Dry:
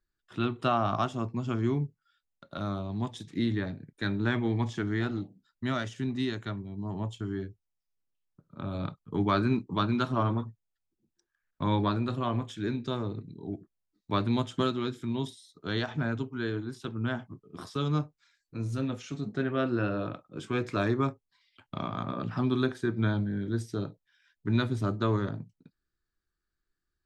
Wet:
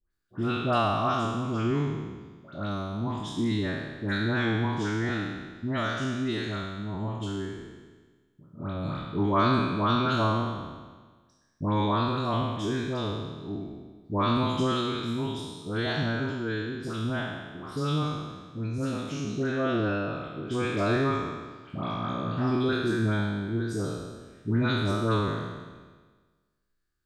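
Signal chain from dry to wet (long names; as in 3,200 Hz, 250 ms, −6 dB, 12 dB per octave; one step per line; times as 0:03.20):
peak hold with a decay on every bin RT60 1.44 s
all-pass dispersion highs, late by 109 ms, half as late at 1,300 Hz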